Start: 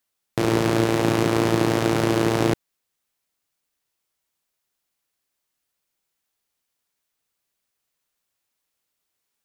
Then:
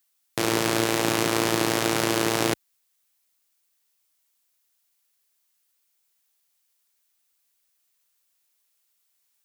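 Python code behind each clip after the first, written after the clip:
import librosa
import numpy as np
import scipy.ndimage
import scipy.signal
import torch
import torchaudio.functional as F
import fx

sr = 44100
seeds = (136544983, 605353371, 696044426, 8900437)

y = fx.tilt_eq(x, sr, slope=2.5)
y = F.gain(torch.from_numpy(y), -1.0).numpy()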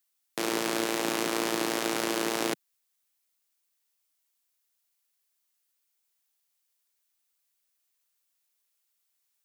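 y = scipy.signal.sosfilt(scipy.signal.butter(4, 180.0, 'highpass', fs=sr, output='sos'), x)
y = F.gain(torch.from_numpy(y), -5.5).numpy()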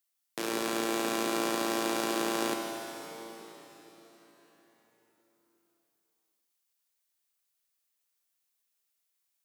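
y = fx.rev_plate(x, sr, seeds[0], rt60_s=4.6, hf_ratio=0.85, predelay_ms=0, drr_db=2.0)
y = F.gain(torch.from_numpy(y), -4.5).numpy()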